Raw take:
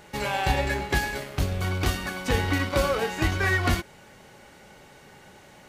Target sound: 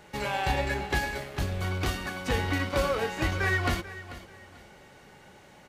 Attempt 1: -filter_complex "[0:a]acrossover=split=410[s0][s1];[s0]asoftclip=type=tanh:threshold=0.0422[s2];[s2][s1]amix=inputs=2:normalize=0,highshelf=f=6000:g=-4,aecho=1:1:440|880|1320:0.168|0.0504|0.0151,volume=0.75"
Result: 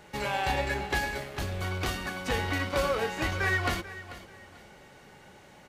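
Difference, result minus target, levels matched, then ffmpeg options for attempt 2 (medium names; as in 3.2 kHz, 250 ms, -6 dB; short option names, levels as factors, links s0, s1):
saturation: distortion +8 dB
-filter_complex "[0:a]acrossover=split=410[s0][s1];[s0]asoftclip=type=tanh:threshold=0.112[s2];[s2][s1]amix=inputs=2:normalize=0,highshelf=f=6000:g=-4,aecho=1:1:440|880|1320:0.168|0.0504|0.0151,volume=0.75"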